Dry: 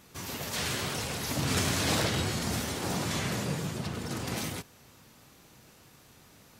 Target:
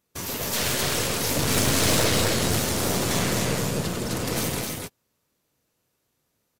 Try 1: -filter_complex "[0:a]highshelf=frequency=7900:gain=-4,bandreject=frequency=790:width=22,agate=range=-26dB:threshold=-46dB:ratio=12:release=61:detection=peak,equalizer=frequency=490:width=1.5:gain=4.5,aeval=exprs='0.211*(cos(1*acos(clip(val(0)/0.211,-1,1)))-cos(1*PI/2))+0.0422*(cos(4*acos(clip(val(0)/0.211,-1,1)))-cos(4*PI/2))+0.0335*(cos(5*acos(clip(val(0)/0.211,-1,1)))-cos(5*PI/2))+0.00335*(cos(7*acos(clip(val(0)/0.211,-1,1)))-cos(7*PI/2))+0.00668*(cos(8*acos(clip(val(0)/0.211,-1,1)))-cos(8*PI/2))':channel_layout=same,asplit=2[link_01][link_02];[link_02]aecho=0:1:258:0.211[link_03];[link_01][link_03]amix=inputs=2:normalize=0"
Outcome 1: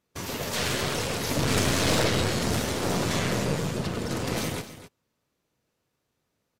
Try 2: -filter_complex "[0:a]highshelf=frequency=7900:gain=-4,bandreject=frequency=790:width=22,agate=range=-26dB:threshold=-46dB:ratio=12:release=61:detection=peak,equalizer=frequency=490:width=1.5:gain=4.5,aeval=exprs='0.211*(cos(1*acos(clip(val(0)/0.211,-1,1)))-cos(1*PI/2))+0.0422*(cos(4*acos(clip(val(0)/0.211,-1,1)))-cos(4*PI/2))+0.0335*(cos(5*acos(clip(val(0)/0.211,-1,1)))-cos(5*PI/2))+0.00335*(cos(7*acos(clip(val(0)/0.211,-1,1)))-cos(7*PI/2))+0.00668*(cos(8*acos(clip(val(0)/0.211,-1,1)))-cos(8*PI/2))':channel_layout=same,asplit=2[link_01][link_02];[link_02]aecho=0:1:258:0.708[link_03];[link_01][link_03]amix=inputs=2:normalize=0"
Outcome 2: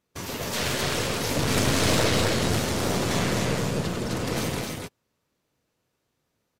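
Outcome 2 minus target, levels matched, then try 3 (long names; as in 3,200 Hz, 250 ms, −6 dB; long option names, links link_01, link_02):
8,000 Hz band −3.5 dB
-filter_complex "[0:a]highshelf=frequency=7900:gain=8,bandreject=frequency=790:width=22,agate=range=-26dB:threshold=-46dB:ratio=12:release=61:detection=peak,equalizer=frequency=490:width=1.5:gain=4.5,aeval=exprs='0.211*(cos(1*acos(clip(val(0)/0.211,-1,1)))-cos(1*PI/2))+0.0422*(cos(4*acos(clip(val(0)/0.211,-1,1)))-cos(4*PI/2))+0.0335*(cos(5*acos(clip(val(0)/0.211,-1,1)))-cos(5*PI/2))+0.00335*(cos(7*acos(clip(val(0)/0.211,-1,1)))-cos(7*PI/2))+0.00668*(cos(8*acos(clip(val(0)/0.211,-1,1)))-cos(8*PI/2))':channel_layout=same,asplit=2[link_01][link_02];[link_02]aecho=0:1:258:0.708[link_03];[link_01][link_03]amix=inputs=2:normalize=0"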